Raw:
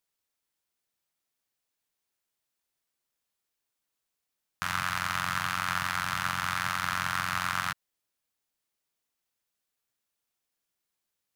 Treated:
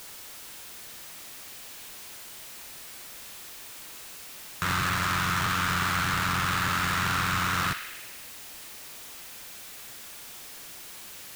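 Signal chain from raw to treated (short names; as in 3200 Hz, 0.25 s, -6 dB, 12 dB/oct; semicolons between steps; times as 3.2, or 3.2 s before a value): power-law curve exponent 0.35; narrowing echo 61 ms, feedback 82%, band-pass 2500 Hz, level -7.5 dB; gain -6.5 dB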